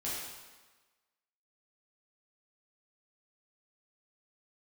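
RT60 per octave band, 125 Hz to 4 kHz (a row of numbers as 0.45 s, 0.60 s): 1.1 s, 1.2 s, 1.2 s, 1.3 s, 1.2 s, 1.2 s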